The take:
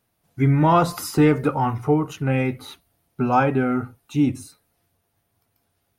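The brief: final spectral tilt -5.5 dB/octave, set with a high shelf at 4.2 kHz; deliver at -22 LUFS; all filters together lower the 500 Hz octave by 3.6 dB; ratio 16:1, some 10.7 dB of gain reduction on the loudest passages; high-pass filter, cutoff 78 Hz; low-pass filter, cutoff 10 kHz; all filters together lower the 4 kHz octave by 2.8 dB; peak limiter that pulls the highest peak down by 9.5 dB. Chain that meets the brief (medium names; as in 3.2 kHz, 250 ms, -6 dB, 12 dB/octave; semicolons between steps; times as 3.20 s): high-pass 78 Hz; low-pass 10 kHz; peaking EQ 500 Hz -4.5 dB; peaking EQ 4 kHz -6.5 dB; treble shelf 4.2 kHz +4.5 dB; compression 16:1, threshold -24 dBFS; trim +13 dB; peak limiter -12 dBFS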